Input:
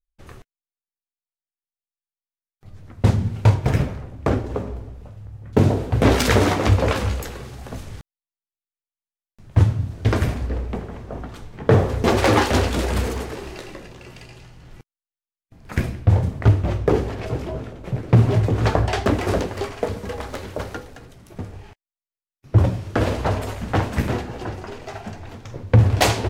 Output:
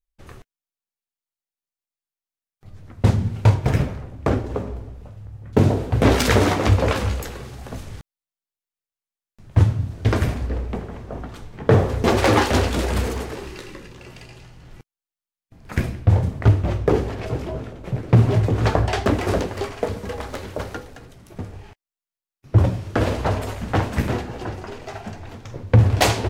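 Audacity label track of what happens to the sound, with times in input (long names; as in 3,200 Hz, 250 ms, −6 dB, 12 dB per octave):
13.460000	13.980000	parametric band 680 Hz −14 dB 0.34 octaves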